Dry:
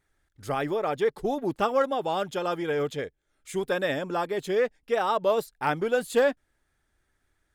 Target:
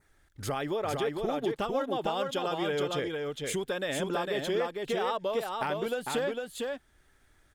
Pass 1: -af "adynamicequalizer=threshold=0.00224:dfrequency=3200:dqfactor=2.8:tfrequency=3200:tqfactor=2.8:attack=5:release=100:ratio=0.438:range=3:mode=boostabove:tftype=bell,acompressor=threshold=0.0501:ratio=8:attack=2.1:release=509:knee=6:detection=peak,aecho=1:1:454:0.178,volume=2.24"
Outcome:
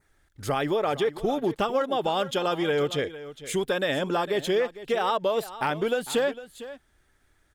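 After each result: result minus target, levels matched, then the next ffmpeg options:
echo-to-direct -11.5 dB; compression: peak gain reduction -6.5 dB
-af "adynamicequalizer=threshold=0.00224:dfrequency=3200:dqfactor=2.8:tfrequency=3200:tqfactor=2.8:attack=5:release=100:ratio=0.438:range=3:mode=boostabove:tftype=bell,acompressor=threshold=0.0501:ratio=8:attack=2.1:release=509:knee=6:detection=peak,aecho=1:1:454:0.668,volume=2.24"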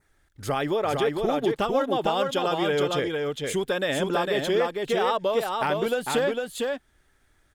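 compression: peak gain reduction -6.5 dB
-af "adynamicequalizer=threshold=0.00224:dfrequency=3200:dqfactor=2.8:tfrequency=3200:tqfactor=2.8:attack=5:release=100:ratio=0.438:range=3:mode=boostabove:tftype=bell,acompressor=threshold=0.0211:ratio=8:attack=2.1:release=509:knee=6:detection=peak,aecho=1:1:454:0.668,volume=2.24"

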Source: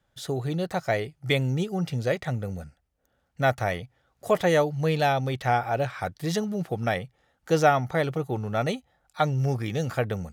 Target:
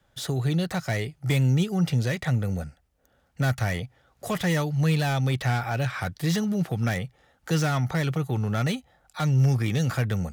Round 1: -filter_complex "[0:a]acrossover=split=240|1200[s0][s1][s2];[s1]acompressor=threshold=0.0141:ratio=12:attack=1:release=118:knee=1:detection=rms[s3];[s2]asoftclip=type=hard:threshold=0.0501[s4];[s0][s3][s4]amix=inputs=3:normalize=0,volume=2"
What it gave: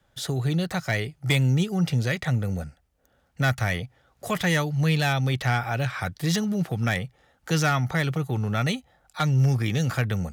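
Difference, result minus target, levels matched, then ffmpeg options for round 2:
hard clipper: distortion -8 dB
-filter_complex "[0:a]acrossover=split=240|1200[s0][s1][s2];[s1]acompressor=threshold=0.0141:ratio=12:attack=1:release=118:knee=1:detection=rms[s3];[s2]asoftclip=type=hard:threshold=0.0168[s4];[s0][s3][s4]amix=inputs=3:normalize=0,volume=2"

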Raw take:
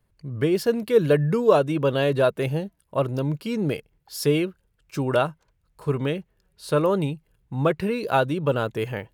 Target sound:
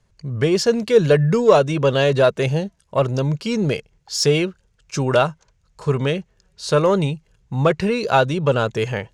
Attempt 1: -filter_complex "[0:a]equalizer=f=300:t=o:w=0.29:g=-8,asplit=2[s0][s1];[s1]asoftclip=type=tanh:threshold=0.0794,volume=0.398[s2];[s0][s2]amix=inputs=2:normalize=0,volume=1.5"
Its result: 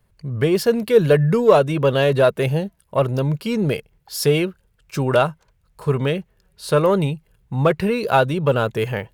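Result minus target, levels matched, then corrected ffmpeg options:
8 kHz band -4.0 dB
-filter_complex "[0:a]lowpass=f=6500:t=q:w=2.9,equalizer=f=300:t=o:w=0.29:g=-8,asplit=2[s0][s1];[s1]asoftclip=type=tanh:threshold=0.0794,volume=0.398[s2];[s0][s2]amix=inputs=2:normalize=0,volume=1.5"

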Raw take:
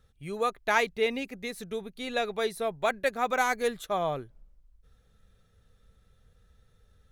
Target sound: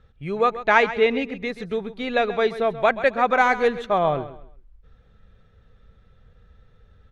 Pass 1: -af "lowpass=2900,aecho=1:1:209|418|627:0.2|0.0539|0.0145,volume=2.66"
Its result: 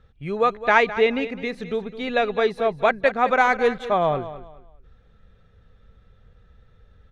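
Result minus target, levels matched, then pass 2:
echo 77 ms late
-af "lowpass=2900,aecho=1:1:132|264|396:0.2|0.0539|0.0145,volume=2.66"

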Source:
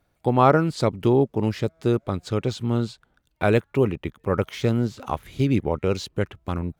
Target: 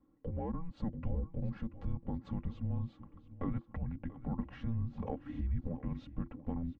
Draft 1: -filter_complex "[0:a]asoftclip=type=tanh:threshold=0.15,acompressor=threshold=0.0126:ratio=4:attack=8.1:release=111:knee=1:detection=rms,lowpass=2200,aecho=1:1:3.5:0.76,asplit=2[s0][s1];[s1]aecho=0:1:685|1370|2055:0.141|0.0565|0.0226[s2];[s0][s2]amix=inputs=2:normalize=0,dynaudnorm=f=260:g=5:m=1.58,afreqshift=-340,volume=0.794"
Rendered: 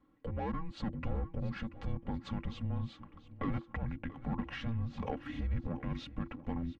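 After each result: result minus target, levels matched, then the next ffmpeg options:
2 kHz band +11.0 dB; saturation: distortion +12 dB
-filter_complex "[0:a]asoftclip=type=tanh:threshold=0.15,acompressor=threshold=0.0126:ratio=4:attack=8.1:release=111:knee=1:detection=rms,lowpass=1000,aecho=1:1:3.5:0.76,asplit=2[s0][s1];[s1]aecho=0:1:685|1370|2055:0.141|0.0565|0.0226[s2];[s0][s2]amix=inputs=2:normalize=0,dynaudnorm=f=260:g=5:m=1.58,afreqshift=-340,volume=0.794"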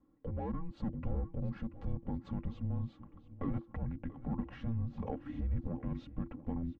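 saturation: distortion +12 dB
-filter_complex "[0:a]asoftclip=type=tanh:threshold=0.473,acompressor=threshold=0.0126:ratio=4:attack=8.1:release=111:knee=1:detection=rms,lowpass=1000,aecho=1:1:3.5:0.76,asplit=2[s0][s1];[s1]aecho=0:1:685|1370|2055:0.141|0.0565|0.0226[s2];[s0][s2]amix=inputs=2:normalize=0,dynaudnorm=f=260:g=5:m=1.58,afreqshift=-340,volume=0.794"

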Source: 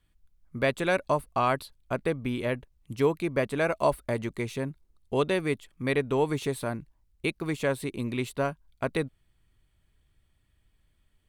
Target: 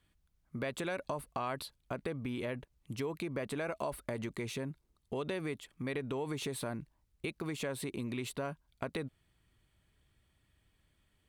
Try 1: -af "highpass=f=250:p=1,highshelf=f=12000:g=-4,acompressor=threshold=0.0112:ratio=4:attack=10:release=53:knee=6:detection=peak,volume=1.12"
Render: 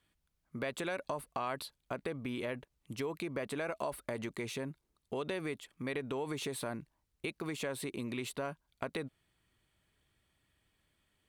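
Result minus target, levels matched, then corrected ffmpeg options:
125 Hz band -3.0 dB
-af "highpass=f=89:p=1,highshelf=f=12000:g=-4,acompressor=threshold=0.0112:ratio=4:attack=10:release=53:knee=6:detection=peak,volume=1.12"

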